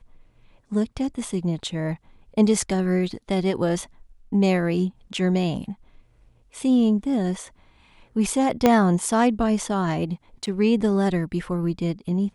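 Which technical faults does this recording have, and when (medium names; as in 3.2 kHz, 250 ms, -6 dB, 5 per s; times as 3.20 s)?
8.66 s: pop -4 dBFS
10.46–10.47 s: dropout 7.5 ms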